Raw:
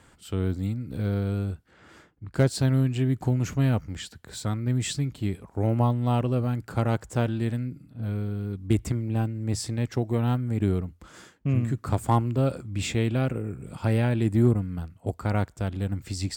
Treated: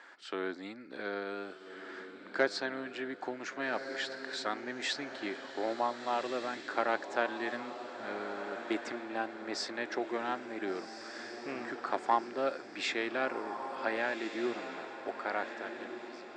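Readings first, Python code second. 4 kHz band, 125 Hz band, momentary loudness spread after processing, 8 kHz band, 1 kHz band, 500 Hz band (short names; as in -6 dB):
-1.5 dB, -37.0 dB, 10 LU, -11.0 dB, -0.5 dB, -4.0 dB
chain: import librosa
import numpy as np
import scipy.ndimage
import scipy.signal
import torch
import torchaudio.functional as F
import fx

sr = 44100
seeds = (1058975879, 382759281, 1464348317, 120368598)

y = fx.fade_out_tail(x, sr, length_s=2.13)
y = fx.rider(y, sr, range_db=3, speed_s=0.5)
y = fx.cabinet(y, sr, low_hz=380.0, low_slope=24, high_hz=5200.0, hz=(470.0, 1700.0, 3000.0), db=(-7, 8, -5))
y = fx.echo_diffused(y, sr, ms=1514, feedback_pct=44, wet_db=-8.5)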